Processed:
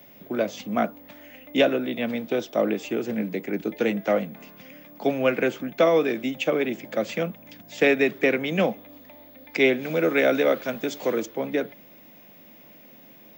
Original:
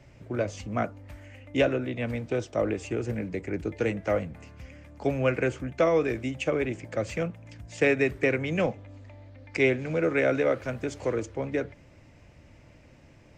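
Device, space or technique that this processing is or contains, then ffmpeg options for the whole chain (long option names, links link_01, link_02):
old television with a line whistle: -filter_complex "[0:a]highpass=frequency=180:width=0.5412,highpass=frequency=180:width=1.3066,equalizer=frequency=210:width_type=q:width=4:gain=6,equalizer=frequency=720:width_type=q:width=4:gain=3,equalizer=frequency=3500:width_type=q:width=4:gain=9,lowpass=frequency=7000:width=0.5412,lowpass=frequency=7000:width=1.3066,aeval=exprs='val(0)+0.00251*sin(2*PI*15625*n/s)':channel_layout=same,asettb=1/sr,asplit=3[link_01][link_02][link_03];[link_01]atrim=end=9.834[link_04];[link_02]atrim=start=9.83:end=11.26,asetpts=PTS-STARTPTS,afade=type=in:duration=0.004:curve=qsin,afade=type=out:start_time=1.426:duration=0.004:curve=qsin,highshelf=frequency=5300:gain=6.5[link_05];[link_03]atrim=start=11.256[link_06];[link_04][link_05]acrossfade=duration=0.004:curve1=hsin:curve2=qsin[link_07];[link_07][link_06]acrossfade=duration=0.004:curve1=qsin:curve2=hsin,volume=3dB"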